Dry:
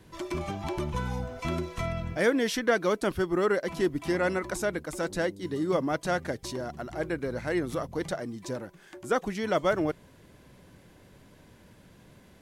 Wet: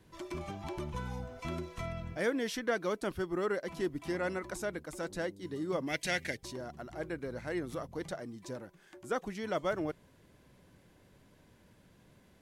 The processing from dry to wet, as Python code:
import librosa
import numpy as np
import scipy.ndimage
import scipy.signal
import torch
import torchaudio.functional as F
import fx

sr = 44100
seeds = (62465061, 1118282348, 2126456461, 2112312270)

y = fx.high_shelf_res(x, sr, hz=1600.0, db=9.5, q=3.0, at=(5.86, 6.35), fade=0.02)
y = y * 10.0 ** (-7.5 / 20.0)